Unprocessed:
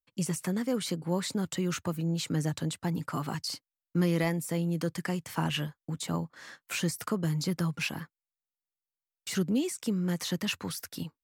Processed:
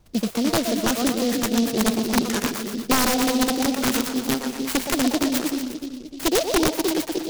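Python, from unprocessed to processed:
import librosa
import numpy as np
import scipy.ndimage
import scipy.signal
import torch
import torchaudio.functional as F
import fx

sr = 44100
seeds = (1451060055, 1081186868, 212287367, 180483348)

p1 = fx.speed_glide(x, sr, from_pct=125, to_pct=183)
p2 = scipy.signal.sosfilt(scipy.signal.butter(2, 5300.0, 'lowpass', fs=sr, output='sos'), p1)
p3 = p2 + fx.echo_split(p2, sr, split_hz=460.0, low_ms=303, high_ms=119, feedback_pct=52, wet_db=-4, dry=0)
p4 = fx.dmg_noise_colour(p3, sr, seeds[0], colour='brown', level_db=-60.0)
p5 = (np.mod(10.0 ** (20.0 / 20.0) * p4 + 1.0, 2.0) - 1.0) / 10.0 ** (20.0 / 20.0)
p6 = fx.noise_mod_delay(p5, sr, seeds[1], noise_hz=4100.0, depth_ms=0.096)
y = p6 * 10.0 ** (8.0 / 20.0)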